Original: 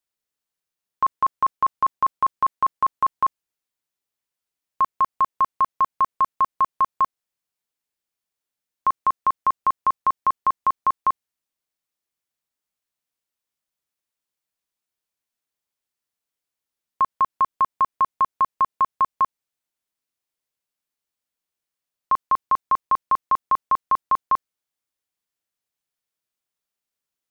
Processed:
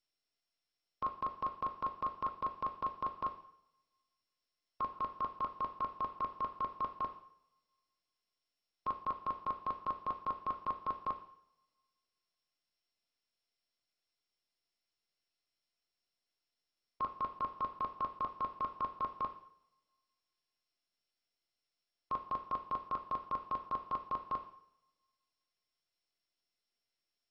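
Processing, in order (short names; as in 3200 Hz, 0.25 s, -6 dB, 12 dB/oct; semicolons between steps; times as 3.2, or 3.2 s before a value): band shelf 1200 Hz -10.5 dB; two-slope reverb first 0.64 s, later 2 s, from -27 dB, DRR 5.5 dB; gain -7 dB; MP2 32 kbps 22050 Hz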